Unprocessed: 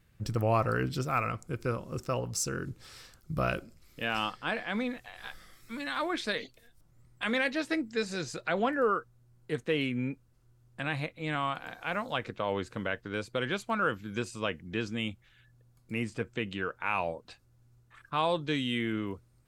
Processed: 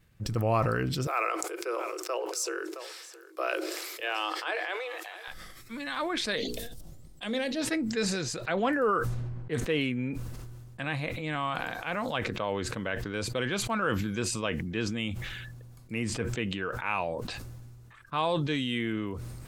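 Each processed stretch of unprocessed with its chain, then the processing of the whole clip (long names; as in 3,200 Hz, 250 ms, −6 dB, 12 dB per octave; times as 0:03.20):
0:01.07–0:05.28: Chebyshev high-pass filter 320 Hz, order 10 + single-tap delay 668 ms −19 dB
0:06.36–0:07.62: flat-topped bell 1,500 Hz −9 dB + mains-hum notches 60/120/180/240/300/360/420/480 Hz
0:08.56–0:09.59: low-pass that shuts in the quiet parts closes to 1,500 Hz, open at −28 dBFS + high-shelf EQ 10,000 Hz +7.5 dB
whole clip: notch filter 1,400 Hz, Q 27; level that may fall only so fast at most 26 dB per second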